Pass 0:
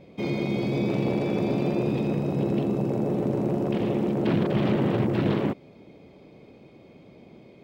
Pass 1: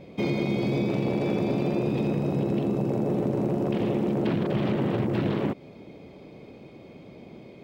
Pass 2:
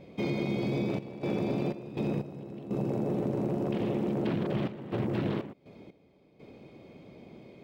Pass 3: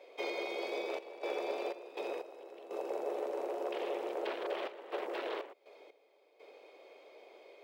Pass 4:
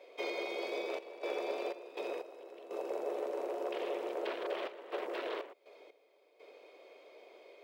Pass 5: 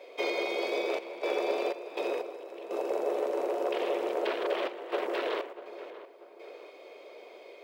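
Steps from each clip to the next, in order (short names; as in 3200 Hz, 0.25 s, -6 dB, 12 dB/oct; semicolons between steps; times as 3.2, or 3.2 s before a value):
compressor, threshold -26 dBFS, peak gain reduction 7.5 dB; gain +4 dB
step gate "xxxx.xx.x..xxxx" 61 bpm -12 dB; gain -4.5 dB
steep high-pass 430 Hz 36 dB/oct
notch 820 Hz, Q 12
tape echo 0.641 s, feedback 49%, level -13 dB, low-pass 1700 Hz; gain +7 dB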